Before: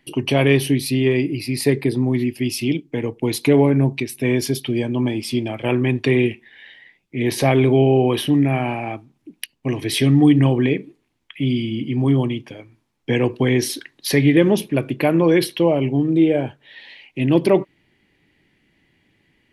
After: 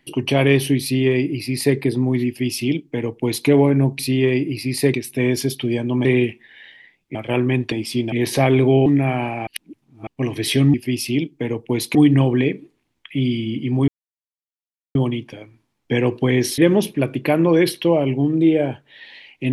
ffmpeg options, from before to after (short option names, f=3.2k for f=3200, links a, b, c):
-filter_complex "[0:a]asplit=14[a][b][c][d][e][f][g][h][i][j][k][l][m][n];[a]atrim=end=3.992[o];[b]atrim=start=0.818:end=1.772[p];[c]atrim=start=3.988:end=5.102[q];[d]atrim=start=6.068:end=7.172[r];[e]atrim=start=5.498:end=6.072[s];[f]atrim=start=5.098:end=5.502[t];[g]atrim=start=7.168:end=7.912[u];[h]atrim=start=8.318:end=8.932[v];[i]atrim=start=8.928:end=9.532,asetpts=PTS-STARTPTS,areverse[w];[j]atrim=start=9.528:end=10.202[x];[k]atrim=start=2.268:end=3.482[y];[l]atrim=start=10.198:end=12.13,asetpts=PTS-STARTPTS,afade=t=out:st=1.928:d=0.004:c=hsin,apad=pad_dur=1.07[z];[m]atrim=start=12.13:end=13.762,asetpts=PTS-STARTPTS,afade=t=in:d=0.004:c=hsin[aa];[n]atrim=start=14.328[ab];[o][p]acrossfade=d=0.004:c1=hsin:c2=hsin[ac];[ac][q]acrossfade=d=0.004:c1=hsin:c2=hsin[ad];[ad][r]acrossfade=d=0.004:c1=hsin:c2=hsin[ae];[ae][s]acrossfade=d=0.004:c1=hsin:c2=hsin[af];[af][t]acrossfade=d=0.004:c1=hsin:c2=hsin[ag];[ag][u]acrossfade=d=0.004:c1=hsin:c2=hsin[ah];[ah][v]acrossfade=d=0.004:c1=hsin:c2=hsin[ai];[ai][w]acrossfade=d=0.004:c1=hsin:c2=hsin[aj];[aj][x]acrossfade=d=0.004:c1=hsin:c2=hsin[ak];[ak][y]acrossfade=d=0.004:c1=hsin:c2=hsin[al];[z][aa]concat=n=2:v=0:a=1[am];[al][am]acrossfade=d=0.004:c1=hsin:c2=hsin[an];[an][ab]acrossfade=d=0.004:c1=hsin:c2=hsin"